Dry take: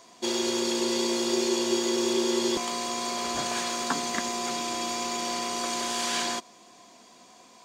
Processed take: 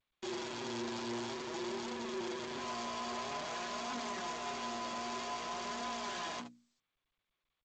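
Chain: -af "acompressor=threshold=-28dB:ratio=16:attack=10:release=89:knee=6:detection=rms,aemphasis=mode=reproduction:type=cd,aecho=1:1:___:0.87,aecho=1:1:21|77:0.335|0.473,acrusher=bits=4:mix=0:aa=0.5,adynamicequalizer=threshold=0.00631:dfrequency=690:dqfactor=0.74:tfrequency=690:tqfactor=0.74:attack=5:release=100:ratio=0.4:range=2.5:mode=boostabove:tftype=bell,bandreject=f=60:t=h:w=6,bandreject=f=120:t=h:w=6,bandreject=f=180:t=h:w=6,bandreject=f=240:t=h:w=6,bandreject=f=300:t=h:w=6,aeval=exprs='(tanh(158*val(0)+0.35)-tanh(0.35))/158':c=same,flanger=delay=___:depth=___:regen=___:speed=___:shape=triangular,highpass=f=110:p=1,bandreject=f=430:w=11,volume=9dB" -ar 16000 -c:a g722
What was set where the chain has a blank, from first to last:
4.8, 3.9, 5.4, 36, 0.51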